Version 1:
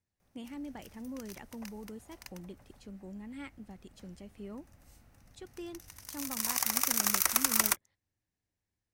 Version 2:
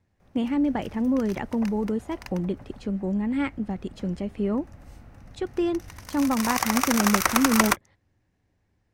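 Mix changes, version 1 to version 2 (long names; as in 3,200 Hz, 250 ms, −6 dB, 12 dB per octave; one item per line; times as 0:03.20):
speech +5.0 dB
master: remove first-order pre-emphasis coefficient 0.8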